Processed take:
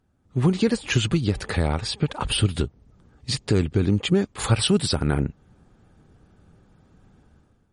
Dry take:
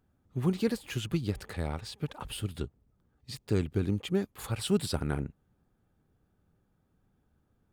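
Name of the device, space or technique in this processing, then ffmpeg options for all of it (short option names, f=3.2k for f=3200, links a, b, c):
low-bitrate web radio: -filter_complex "[0:a]asplit=3[a][b][c];[a]afade=t=out:st=3.35:d=0.02[d];[b]lowpass=f=11k:w=0.5412,lowpass=f=11k:w=1.3066,afade=t=in:st=3.35:d=0.02,afade=t=out:st=4.13:d=0.02[e];[c]afade=t=in:st=4.13:d=0.02[f];[d][e][f]amix=inputs=3:normalize=0,dynaudnorm=f=180:g=5:m=13dB,alimiter=limit=-13.5dB:level=0:latency=1:release=353,volume=4dB" -ar 44100 -c:a libmp3lame -b:a 40k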